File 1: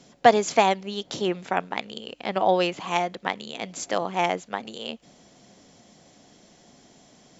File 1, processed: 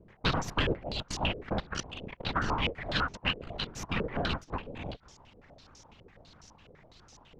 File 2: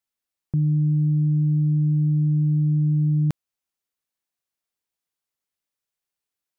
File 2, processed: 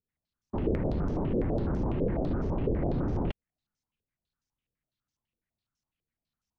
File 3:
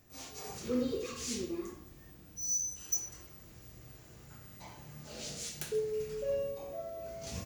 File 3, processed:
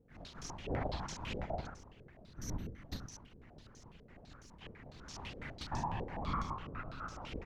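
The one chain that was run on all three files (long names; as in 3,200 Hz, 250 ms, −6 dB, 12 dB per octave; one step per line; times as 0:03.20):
in parallel at −2 dB: downward compressor, threshold −33 dBFS
on the sum: ring modulation 92 Hz
full-wave rectification
random phases in short frames
soft clipping −19 dBFS
low-pass on a step sequencer 12 Hz 470–5,900 Hz
level −4.5 dB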